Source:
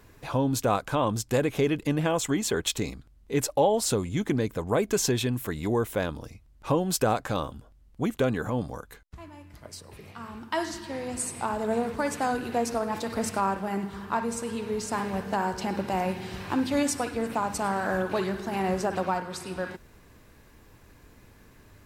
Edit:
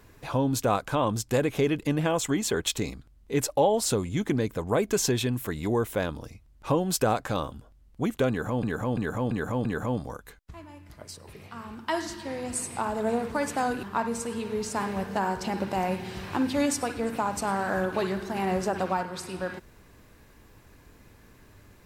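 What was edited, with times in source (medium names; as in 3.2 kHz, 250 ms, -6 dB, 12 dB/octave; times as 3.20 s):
8.29–8.63 s: loop, 5 plays
12.47–14.00 s: delete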